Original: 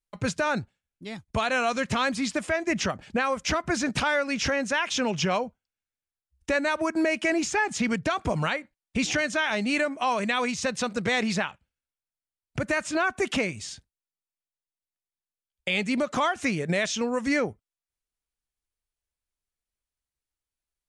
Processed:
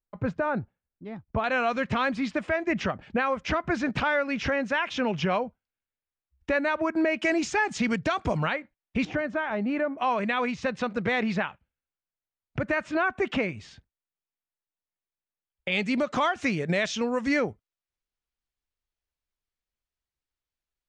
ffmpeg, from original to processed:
ffmpeg -i in.wav -af "asetnsamples=nb_out_samples=441:pad=0,asendcmd='1.44 lowpass f 2800;7.22 lowpass f 5500;8.37 lowpass f 2900;9.05 lowpass f 1300;9.98 lowpass f 2600;15.72 lowpass f 5100',lowpass=1300" out.wav

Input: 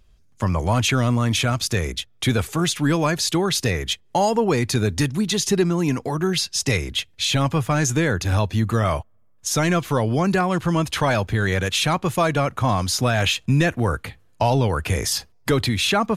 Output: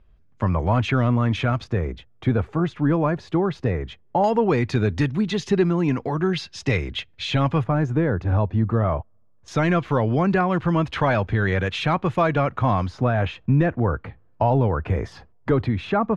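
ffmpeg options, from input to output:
ffmpeg -i in.wav -af "asetnsamples=nb_out_samples=441:pad=0,asendcmd='1.64 lowpass f 1200;4.24 lowpass f 2600;7.64 lowpass f 1100;9.48 lowpass f 2400;12.88 lowpass f 1300',lowpass=2000" out.wav

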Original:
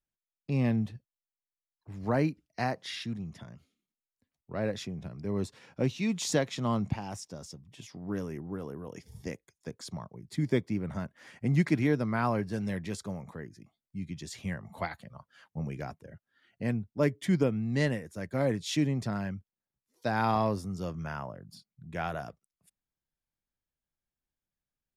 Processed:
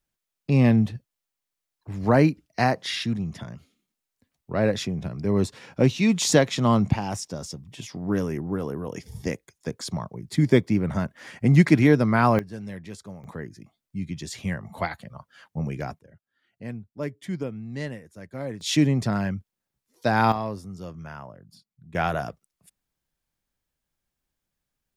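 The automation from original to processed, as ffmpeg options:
ffmpeg -i in.wav -af "asetnsamples=nb_out_samples=441:pad=0,asendcmd='12.39 volume volume -3dB;13.24 volume volume 6.5dB;15.99 volume volume -4.5dB;18.61 volume volume 8dB;20.32 volume volume -2dB;21.95 volume volume 9dB',volume=9.5dB" out.wav

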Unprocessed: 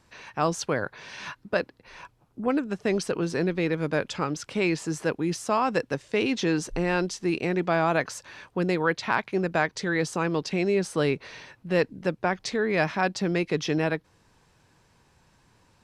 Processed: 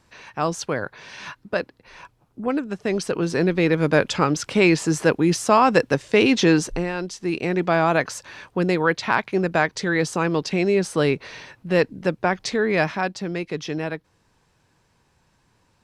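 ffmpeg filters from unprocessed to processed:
ffmpeg -i in.wav -af "volume=16.5dB,afade=type=in:start_time=2.89:duration=1.09:silence=0.446684,afade=type=out:start_time=6.52:duration=0.41:silence=0.251189,afade=type=in:start_time=6.93:duration=0.73:silence=0.398107,afade=type=out:start_time=12.72:duration=0.45:silence=0.473151" out.wav

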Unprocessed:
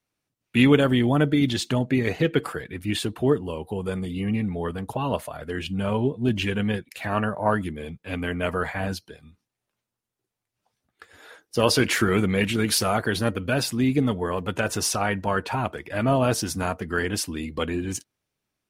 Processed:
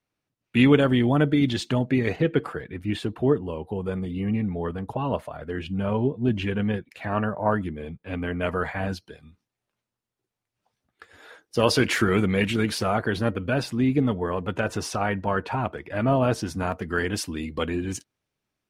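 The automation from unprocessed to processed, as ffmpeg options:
ffmpeg -i in.wav -af "asetnsamples=nb_out_samples=441:pad=0,asendcmd='2.16 lowpass f 1700;8.41 lowpass f 3300;9.07 lowpass f 5600;12.66 lowpass f 2200;16.72 lowpass f 5800',lowpass=frequency=3900:poles=1" out.wav

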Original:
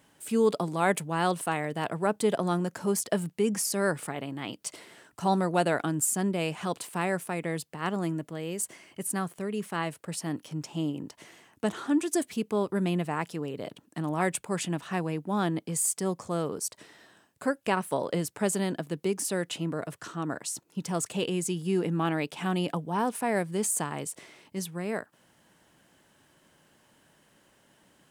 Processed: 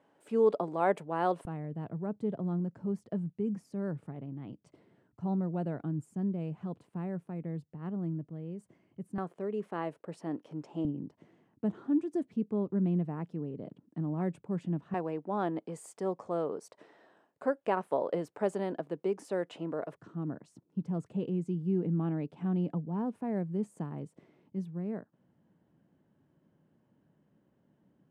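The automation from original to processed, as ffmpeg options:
ffmpeg -i in.wav -af "asetnsamples=nb_out_samples=441:pad=0,asendcmd='1.45 bandpass f 120;9.18 bandpass f 460;10.85 bandpass f 180;14.94 bandpass f 570;19.96 bandpass f 170',bandpass=frequency=550:width_type=q:width=0.94:csg=0" out.wav

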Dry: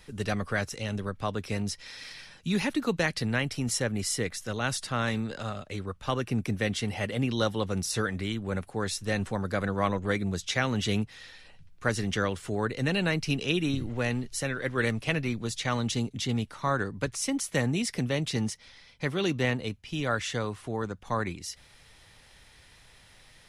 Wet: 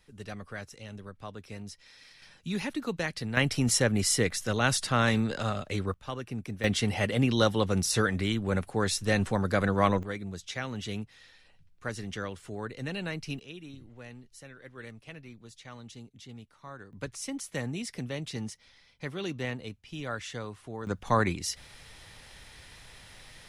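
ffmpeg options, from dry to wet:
ffmpeg -i in.wav -af "asetnsamples=nb_out_samples=441:pad=0,asendcmd='2.22 volume volume -5dB;3.37 volume volume 4dB;5.94 volume volume -7.5dB;6.64 volume volume 3dB;10.03 volume volume -8dB;13.39 volume volume -17.5dB;16.93 volume volume -7dB;20.87 volume volume 5dB',volume=-11dB" out.wav

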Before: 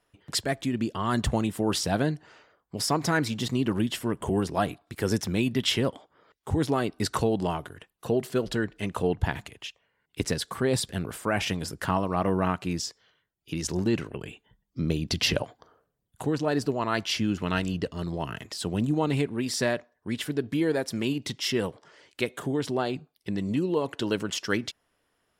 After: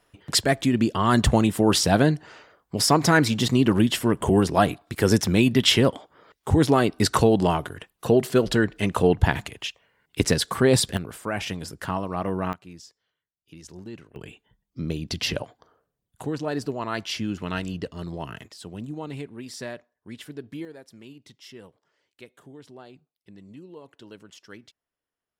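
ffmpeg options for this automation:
ffmpeg -i in.wav -af "asetnsamples=nb_out_samples=441:pad=0,asendcmd='10.97 volume volume -2dB;12.53 volume volume -14dB;14.16 volume volume -2dB;18.48 volume volume -9dB;20.65 volume volume -17.5dB',volume=7dB" out.wav

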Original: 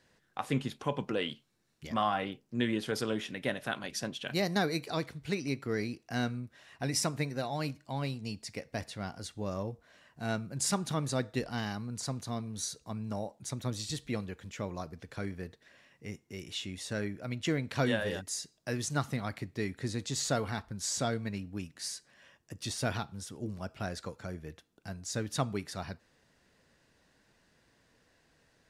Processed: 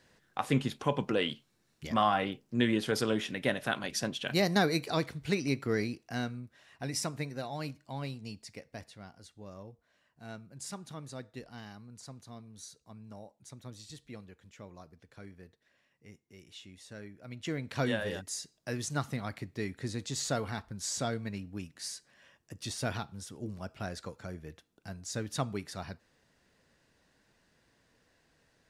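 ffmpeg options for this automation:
ffmpeg -i in.wav -af "volume=13dB,afade=type=out:start_time=5.69:duration=0.58:silence=0.473151,afade=type=out:start_time=8.14:duration=0.97:silence=0.398107,afade=type=in:start_time=17.14:duration=0.68:silence=0.316228" out.wav

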